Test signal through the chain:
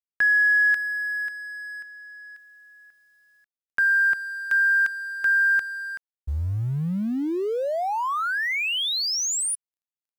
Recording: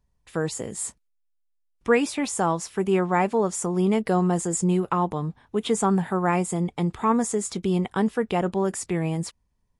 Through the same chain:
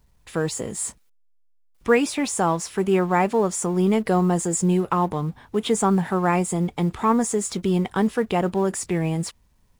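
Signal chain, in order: G.711 law mismatch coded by mu; gain +1.5 dB

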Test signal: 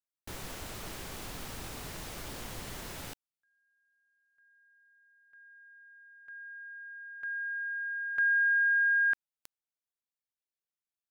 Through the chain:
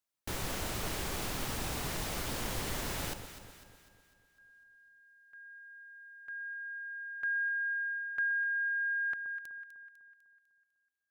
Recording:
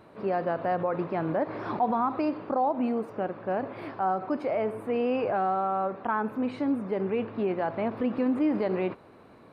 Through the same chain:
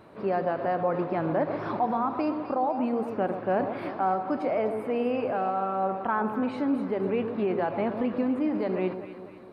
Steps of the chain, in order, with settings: vocal rider within 5 dB 0.5 s; echo with dull and thin repeats by turns 0.125 s, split 1100 Hz, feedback 69%, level -8 dB

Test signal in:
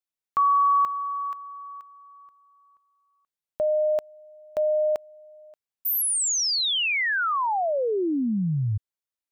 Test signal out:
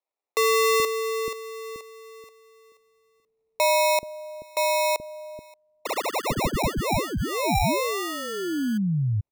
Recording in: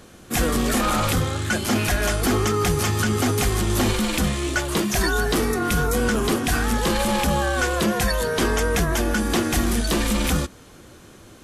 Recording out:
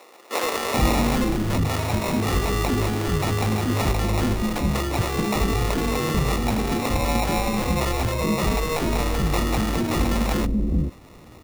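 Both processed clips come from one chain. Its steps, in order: sample-and-hold 28×; bands offset in time highs, lows 0.43 s, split 400 Hz; vocal rider within 5 dB 2 s

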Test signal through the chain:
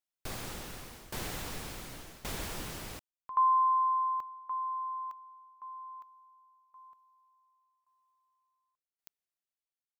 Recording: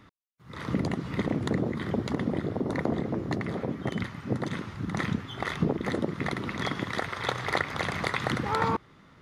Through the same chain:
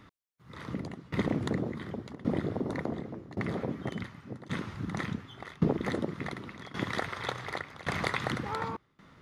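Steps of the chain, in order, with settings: tremolo saw down 0.89 Hz, depth 90%

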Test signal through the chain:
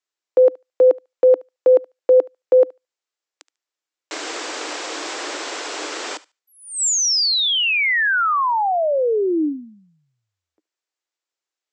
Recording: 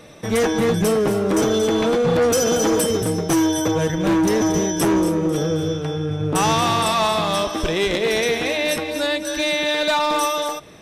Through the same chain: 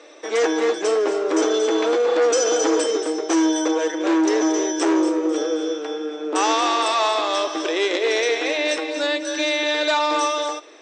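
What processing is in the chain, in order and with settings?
Chebyshev band-pass 300–7700 Hz, order 5; on a send: thinning echo 73 ms, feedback 15%, high-pass 890 Hz, level -19 dB

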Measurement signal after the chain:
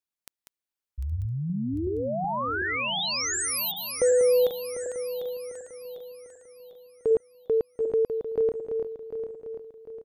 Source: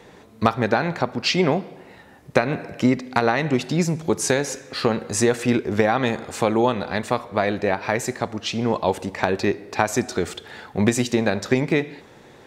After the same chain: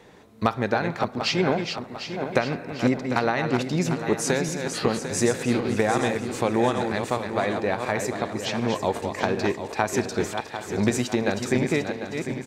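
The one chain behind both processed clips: regenerating reverse delay 0.374 s, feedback 64%, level -6.5 dB; echo 0.819 s -22.5 dB; gain -4 dB

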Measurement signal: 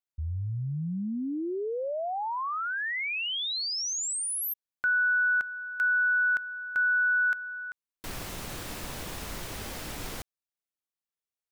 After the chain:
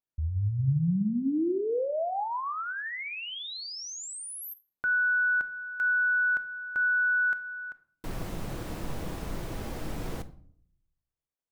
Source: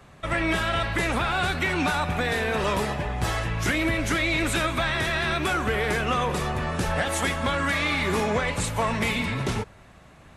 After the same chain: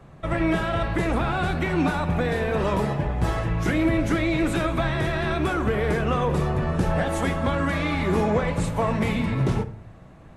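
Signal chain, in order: tilt shelf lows +6.5 dB, about 1200 Hz; shoebox room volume 830 m³, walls furnished, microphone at 0.66 m; gain -2 dB

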